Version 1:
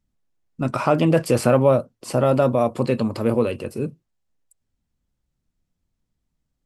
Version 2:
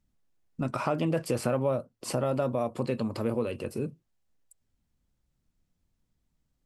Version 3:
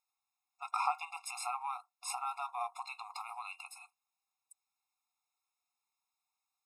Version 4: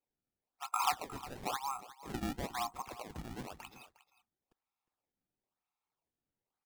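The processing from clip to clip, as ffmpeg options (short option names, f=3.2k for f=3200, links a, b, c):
-af "acompressor=threshold=-33dB:ratio=2"
-af "afftfilt=real='re*eq(mod(floor(b*sr/1024/700),2),1)':imag='im*eq(mod(floor(b*sr/1024/700),2),1)':win_size=1024:overlap=0.75,volume=1dB"
-af "adynamicsmooth=sensitivity=2:basefreq=3.6k,acrusher=samples=24:mix=1:aa=0.000001:lfo=1:lforange=38.4:lforate=1,aecho=1:1:358:0.15,volume=1dB"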